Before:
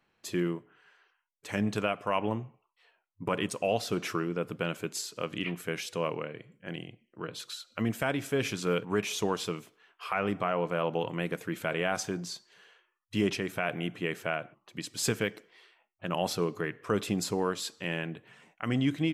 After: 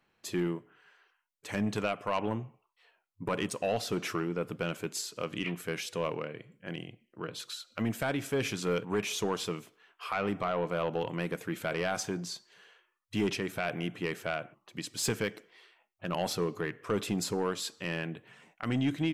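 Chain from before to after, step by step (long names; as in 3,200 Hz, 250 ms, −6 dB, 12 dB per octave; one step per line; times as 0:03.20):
soft clipping −21 dBFS, distortion −16 dB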